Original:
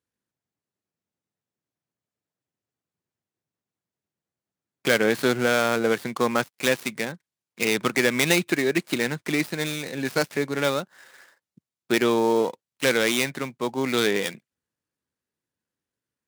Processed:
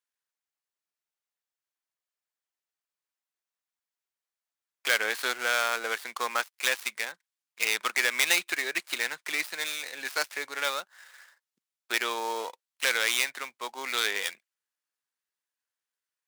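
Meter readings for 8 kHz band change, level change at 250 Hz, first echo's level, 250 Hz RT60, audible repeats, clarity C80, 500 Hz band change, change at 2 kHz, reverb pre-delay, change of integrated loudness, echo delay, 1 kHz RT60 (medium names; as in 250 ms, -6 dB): -1.0 dB, -22.0 dB, no echo, no reverb, no echo, no reverb, -14.0 dB, -1.5 dB, no reverb, -4.5 dB, no echo, no reverb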